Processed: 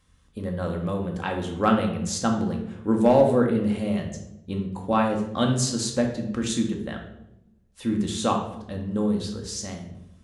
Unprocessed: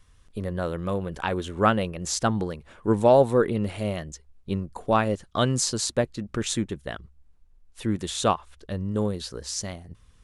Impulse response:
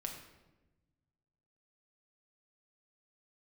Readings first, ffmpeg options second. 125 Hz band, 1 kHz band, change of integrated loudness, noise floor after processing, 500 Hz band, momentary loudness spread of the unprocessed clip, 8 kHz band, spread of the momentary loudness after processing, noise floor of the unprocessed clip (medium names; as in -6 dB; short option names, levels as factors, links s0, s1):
0.0 dB, -0.5 dB, +1.0 dB, -59 dBFS, -0.5 dB, 13 LU, -1.5 dB, 14 LU, -58 dBFS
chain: -filter_complex "[0:a]highpass=43,equalizer=f=210:w=1.7:g=3.5,asoftclip=type=hard:threshold=0.376[s0];[1:a]atrim=start_sample=2205,asetrate=61740,aresample=44100[s1];[s0][s1]afir=irnorm=-1:irlink=0,volume=1.41"